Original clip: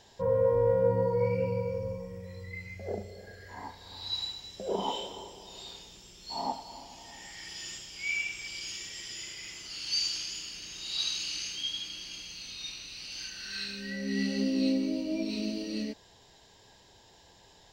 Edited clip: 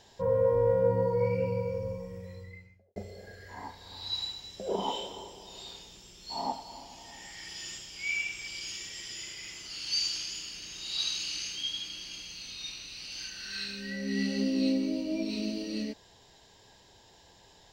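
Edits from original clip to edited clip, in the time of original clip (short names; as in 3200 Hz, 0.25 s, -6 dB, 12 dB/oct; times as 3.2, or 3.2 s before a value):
2.19–2.96 studio fade out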